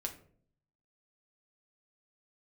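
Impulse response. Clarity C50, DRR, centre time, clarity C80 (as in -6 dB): 11.5 dB, 1.5 dB, 11 ms, 16.0 dB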